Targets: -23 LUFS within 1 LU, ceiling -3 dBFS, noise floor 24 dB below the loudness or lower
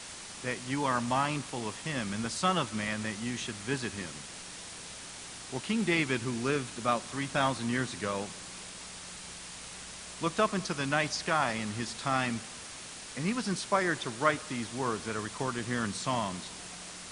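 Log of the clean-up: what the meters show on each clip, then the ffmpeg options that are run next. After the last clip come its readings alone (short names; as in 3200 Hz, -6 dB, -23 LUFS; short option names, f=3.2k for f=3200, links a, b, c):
noise floor -45 dBFS; noise floor target -57 dBFS; loudness -33.0 LUFS; peak -10.5 dBFS; loudness target -23.0 LUFS
-> -af "afftdn=nr=12:nf=-45"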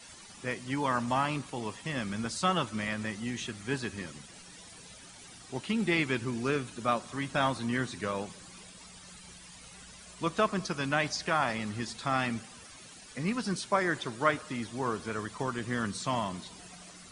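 noise floor -51 dBFS; noise floor target -56 dBFS
-> -af "afftdn=nr=6:nf=-51"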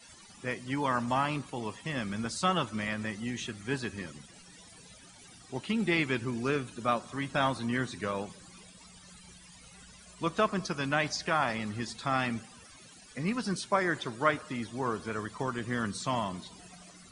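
noise floor -54 dBFS; noise floor target -56 dBFS
-> -af "afftdn=nr=6:nf=-54"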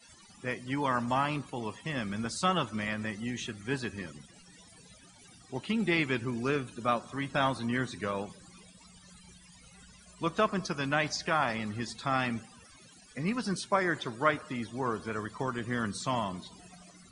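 noise floor -57 dBFS; loudness -32.5 LUFS; peak -11.0 dBFS; loudness target -23.0 LUFS
-> -af "volume=9.5dB,alimiter=limit=-3dB:level=0:latency=1"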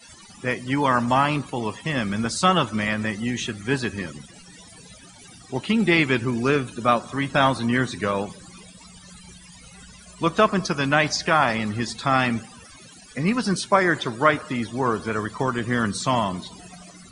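loudness -23.0 LUFS; peak -3.0 dBFS; noise floor -47 dBFS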